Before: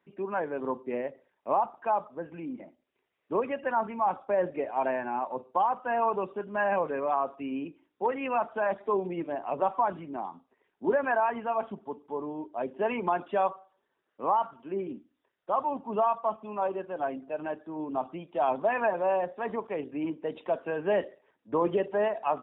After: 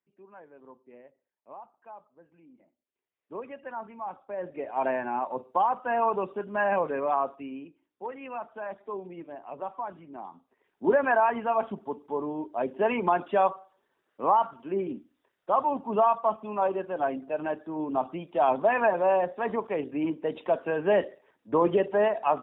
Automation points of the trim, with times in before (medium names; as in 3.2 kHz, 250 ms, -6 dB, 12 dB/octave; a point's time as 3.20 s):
2.51 s -19 dB
3.42 s -9.5 dB
4.31 s -9.5 dB
4.85 s +1.5 dB
7.24 s +1.5 dB
7.67 s -8.5 dB
9.97 s -8.5 dB
10.89 s +3.5 dB